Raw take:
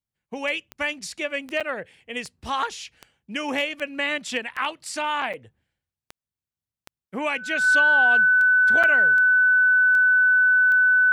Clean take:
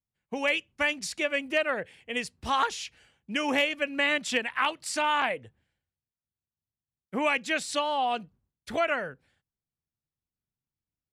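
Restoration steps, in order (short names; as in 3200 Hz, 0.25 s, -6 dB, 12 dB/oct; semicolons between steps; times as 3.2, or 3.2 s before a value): de-click; notch 1500 Hz, Q 30; interpolate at 1.6/5.33/8.83, 6.6 ms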